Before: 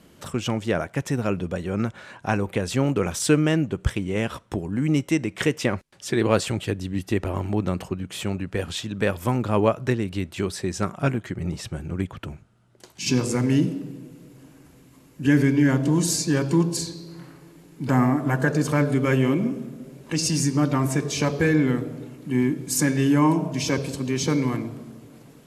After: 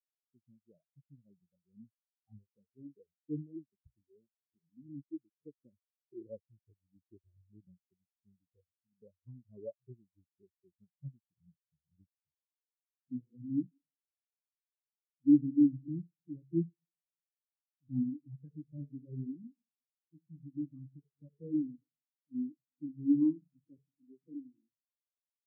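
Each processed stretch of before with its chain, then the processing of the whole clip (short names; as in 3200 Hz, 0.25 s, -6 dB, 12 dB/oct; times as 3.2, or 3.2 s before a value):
1.95–5.14 flange 1.2 Hz, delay 2.2 ms, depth 7.2 ms, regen +59% + notches 60/120/180/240 Hz + sample leveller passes 1
23.98–24.72 zero-crossing step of -30 dBFS + weighting filter D
whole clip: Bessel low-pass 950 Hz; spectral expander 4:1; gain -8 dB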